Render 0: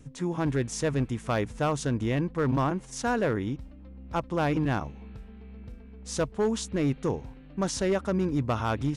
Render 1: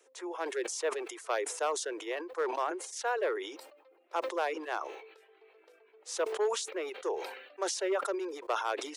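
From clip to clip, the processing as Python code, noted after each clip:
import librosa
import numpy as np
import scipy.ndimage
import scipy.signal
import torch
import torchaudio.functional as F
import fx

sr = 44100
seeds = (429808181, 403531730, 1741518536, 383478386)

y = scipy.signal.sosfilt(scipy.signal.butter(12, 360.0, 'highpass', fs=sr, output='sos'), x)
y = fx.dereverb_blind(y, sr, rt60_s=0.71)
y = fx.sustainer(y, sr, db_per_s=61.0)
y = y * 10.0 ** (-3.0 / 20.0)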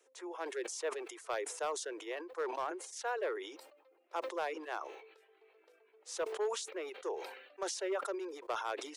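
y = np.clip(x, -10.0 ** (-22.5 / 20.0), 10.0 ** (-22.5 / 20.0))
y = y * 10.0 ** (-5.0 / 20.0)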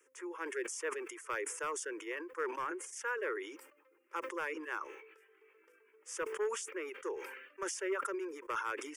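y = fx.fixed_phaser(x, sr, hz=1700.0, stages=4)
y = y * 10.0 ** (5.0 / 20.0)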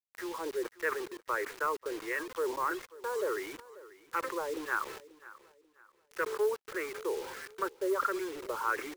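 y = fx.filter_lfo_lowpass(x, sr, shape='sine', hz=1.5, low_hz=670.0, high_hz=1900.0, q=2.0)
y = fx.quant_dither(y, sr, seeds[0], bits=8, dither='none')
y = fx.echo_feedback(y, sr, ms=538, feedback_pct=32, wet_db=-19.0)
y = y * 10.0 ** (3.0 / 20.0)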